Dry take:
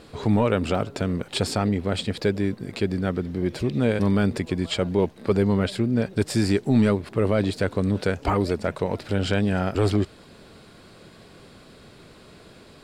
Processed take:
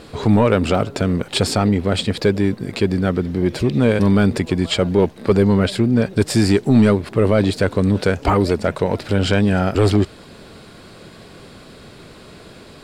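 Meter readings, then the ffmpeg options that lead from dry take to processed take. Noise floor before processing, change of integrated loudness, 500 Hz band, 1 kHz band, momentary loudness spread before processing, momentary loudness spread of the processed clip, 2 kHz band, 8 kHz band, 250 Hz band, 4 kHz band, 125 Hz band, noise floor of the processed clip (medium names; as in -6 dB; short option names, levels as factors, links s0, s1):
-49 dBFS, +6.5 dB, +6.5 dB, +6.5 dB, 6 LU, 6 LU, +6.0 dB, +7.0 dB, +6.5 dB, +7.0 dB, +6.5 dB, -42 dBFS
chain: -af "acontrast=88"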